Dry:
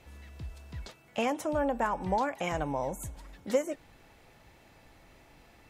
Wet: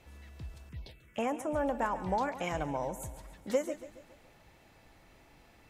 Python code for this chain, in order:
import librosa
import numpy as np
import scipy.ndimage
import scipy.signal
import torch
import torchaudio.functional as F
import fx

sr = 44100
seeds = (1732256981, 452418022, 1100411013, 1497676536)

p1 = x + fx.echo_feedback(x, sr, ms=140, feedback_pct=48, wet_db=-14.0, dry=0)
p2 = fx.env_phaser(p1, sr, low_hz=580.0, high_hz=4400.0, full_db=-30.0, at=(0.69, 1.56))
y = p2 * 10.0 ** (-2.5 / 20.0)